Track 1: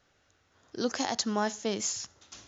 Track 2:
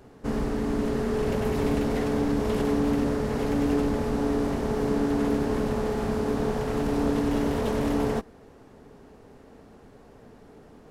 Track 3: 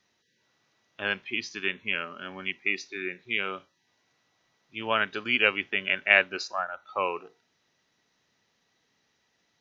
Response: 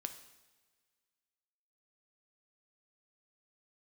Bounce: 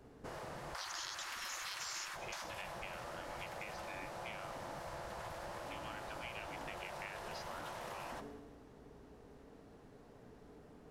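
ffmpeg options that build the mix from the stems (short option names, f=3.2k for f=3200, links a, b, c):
-filter_complex "[0:a]bandreject=f=50:t=h:w=6,bandreject=f=100:t=h:w=6,bandreject=f=150:t=h:w=6,bandreject=f=200:t=h:w=6,bandreject=f=250:t=h:w=6,bandreject=f=300:t=h:w=6,bandreject=f=350:t=h:w=6,bandreject=f=400:t=h:w=6,bandreject=f=450:t=h:w=6,bandreject=f=500:t=h:w=6,agate=range=-59dB:threshold=-55dB:ratio=16:detection=peak,equalizer=f=125:t=o:w=1:g=-11,equalizer=f=250:t=o:w=1:g=-6,equalizer=f=500:t=o:w=1:g=4,equalizer=f=1k:t=o:w=1:g=-12,equalizer=f=2k:t=o:w=1:g=-8,equalizer=f=4k:t=o:w=1:g=4,volume=-2dB,asplit=3[a][b][c];[b]volume=-5dB[d];[1:a]volume=-1dB,asplit=2[e][f];[f]volume=-6.5dB[g];[2:a]acompressor=threshold=-28dB:ratio=12,flanger=delay=4:depth=5.3:regen=71:speed=1.2:shape=sinusoidal,adelay=950,volume=-7.5dB,asplit=2[h][i];[i]volume=-23.5dB[j];[c]apad=whole_len=480872[k];[e][k]sidechaingate=range=-22dB:threshold=-52dB:ratio=16:detection=peak[l];[3:a]atrim=start_sample=2205[m];[d][g][j]amix=inputs=3:normalize=0[n];[n][m]afir=irnorm=-1:irlink=0[o];[a][l][h][o]amix=inputs=4:normalize=0,afftfilt=real='re*lt(hypot(re,im),0.0562)':imag='im*lt(hypot(re,im),0.0562)':win_size=1024:overlap=0.75,aeval=exprs='val(0)+0.000355*(sin(2*PI*60*n/s)+sin(2*PI*2*60*n/s)/2+sin(2*PI*3*60*n/s)/3+sin(2*PI*4*60*n/s)/4+sin(2*PI*5*60*n/s)/5)':c=same,acompressor=threshold=-43dB:ratio=3"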